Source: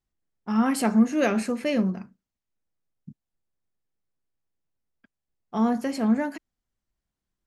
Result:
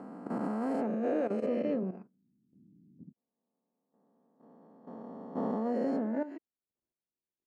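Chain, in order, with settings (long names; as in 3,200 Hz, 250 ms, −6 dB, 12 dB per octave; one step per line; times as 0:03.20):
peak hold with a rise ahead of every peak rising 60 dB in 2.21 s
brickwall limiter −16.5 dBFS, peak gain reduction 8.5 dB
output level in coarse steps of 13 dB
resonant band-pass 420 Hz, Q 1.5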